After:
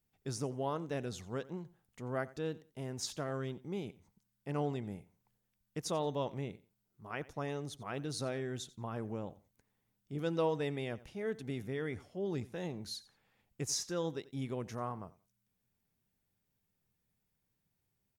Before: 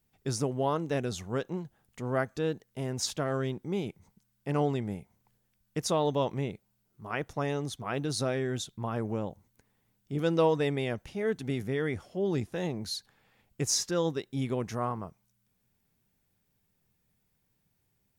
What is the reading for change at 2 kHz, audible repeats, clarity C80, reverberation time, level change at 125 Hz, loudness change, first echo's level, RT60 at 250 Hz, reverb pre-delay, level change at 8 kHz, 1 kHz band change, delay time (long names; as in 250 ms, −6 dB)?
−7.5 dB, 2, no reverb audible, no reverb audible, −7.5 dB, −7.5 dB, −19.5 dB, no reverb audible, no reverb audible, −7.5 dB, −7.5 dB, 89 ms